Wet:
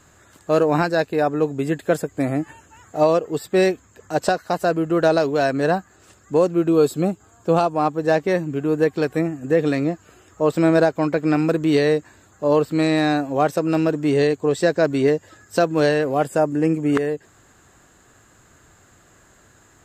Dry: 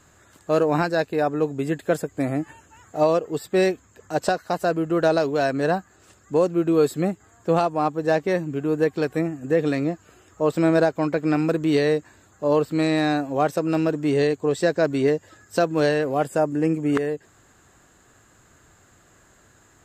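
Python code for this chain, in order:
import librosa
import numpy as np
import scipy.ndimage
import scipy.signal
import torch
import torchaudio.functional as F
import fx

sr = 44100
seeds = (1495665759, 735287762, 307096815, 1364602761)

y = fx.peak_eq(x, sr, hz=1900.0, db=fx.line((6.68, -14.0), (7.74, -7.0)), octaves=0.3, at=(6.68, 7.74), fade=0.02)
y = F.gain(torch.from_numpy(y), 2.5).numpy()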